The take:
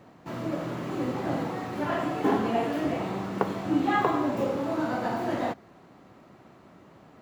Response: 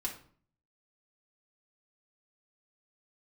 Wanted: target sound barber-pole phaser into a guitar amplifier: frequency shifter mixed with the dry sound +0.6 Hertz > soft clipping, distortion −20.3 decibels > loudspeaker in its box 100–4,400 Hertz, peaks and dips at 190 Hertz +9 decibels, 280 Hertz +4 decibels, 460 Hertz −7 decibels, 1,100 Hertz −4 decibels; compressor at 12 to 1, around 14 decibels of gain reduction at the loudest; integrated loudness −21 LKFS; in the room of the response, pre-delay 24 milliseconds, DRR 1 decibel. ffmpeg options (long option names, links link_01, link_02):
-filter_complex "[0:a]acompressor=threshold=-34dB:ratio=12,asplit=2[link_01][link_02];[1:a]atrim=start_sample=2205,adelay=24[link_03];[link_02][link_03]afir=irnorm=-1:irlink=0,volume=-2.5dB[link_04];[link_01][link_04]amix=inputs=2:normalize=0,asplit=2[link_05][link_06];[link_06]afreqshift=0.6[link_07];[link_05][link_07]amix=inputs=2:normalize=1,asoftclip=threshold=-30dB,highpass=100,equalizer=frequency=190:width_type=q:width=4:gain=9,equalizer=frequency=280:width_type=q:width=4:gain=4,equalizer=frequency=460:width_type=q:width=4:gain=-7,equalizer=frequency=1100:width_type=q:width=4:gain=-4,lowpass=frequency=4400:width=0.5412,lowpass=frequency=4400:width=1.3066,volume=16.5dB"